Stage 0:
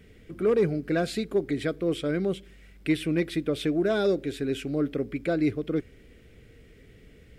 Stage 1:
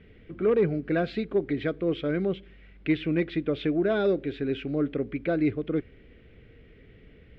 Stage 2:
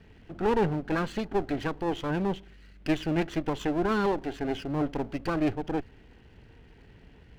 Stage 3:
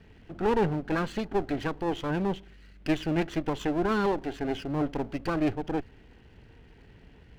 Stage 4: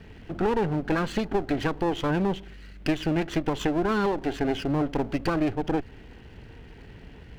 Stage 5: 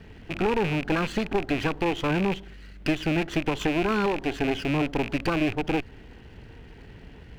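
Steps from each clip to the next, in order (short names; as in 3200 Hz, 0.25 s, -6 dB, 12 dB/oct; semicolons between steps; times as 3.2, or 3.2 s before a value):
LPF 3400 Hz 24 dB/oct
minimum comb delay 0.66 ms
nothing audible
compressor, threshold -29 dBFS, peak gain reduction 9 dB; gain +7.5 dB
rattling part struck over -34 dBFS, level -21 dBFS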